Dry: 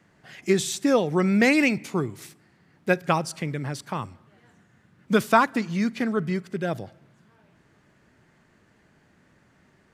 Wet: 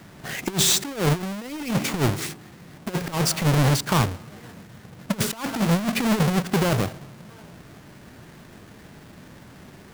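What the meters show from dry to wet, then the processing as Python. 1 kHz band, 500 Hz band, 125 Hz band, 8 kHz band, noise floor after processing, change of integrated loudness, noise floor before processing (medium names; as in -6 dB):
-2.0 dB, -3.0 dB, +8.0 dB, +10.0 dB, -47 dBFS, +1.0 dB, -62 dBFS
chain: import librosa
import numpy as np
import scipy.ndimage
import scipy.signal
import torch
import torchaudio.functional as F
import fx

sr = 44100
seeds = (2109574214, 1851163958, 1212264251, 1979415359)

y = fx.halfwave_hold(x, sr)
y = fx.over_compress(y, sr, threshold_db=-24.0, ratio=-0.5)
y = 10.0 ** (-17.5 / 20.0) * np.tanh(y / 10.0 ** (-17.5 / 20.0))
y = y * librosa.db_to_amplitude(4.0)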